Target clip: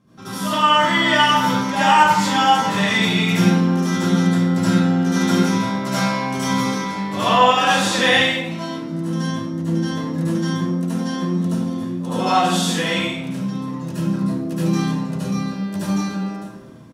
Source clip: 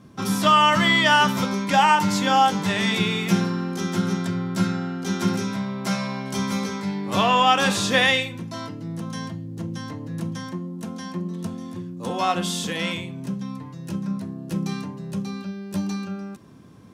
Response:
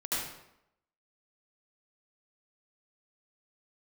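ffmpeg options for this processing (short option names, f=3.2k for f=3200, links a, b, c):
-filter_complex "[0:a]asplit=5[a][b][c][d][e];[b]adelay=117,afreqshift=110,volume=-23dB[f];[c]adelay=234,afreqshift=220,volume=-27.3dB[g];[d]adelay=351,afreqshift=330,volume=-31.6dB[h];[e]adelay=468,afreqshift=440,volume=-35.9dB[i];[a][f][g][h][i]amix=inputs=5:normalize=0,dynaudnorm=f=230:g=9:m=8dB[j];[1:a]atrim=start_sample=2205[k];[j][k]afir=irnorm=-1:irlink=0,volume=-6dB"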